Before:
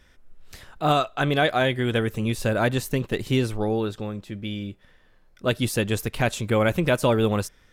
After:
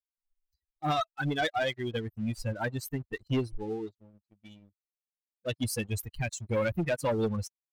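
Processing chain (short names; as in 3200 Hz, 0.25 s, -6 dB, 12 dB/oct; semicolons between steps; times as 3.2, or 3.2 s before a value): per-bin expansion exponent 3; sample leveller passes 2; gain -7 dB; MP3 320 kbps 48000 Hz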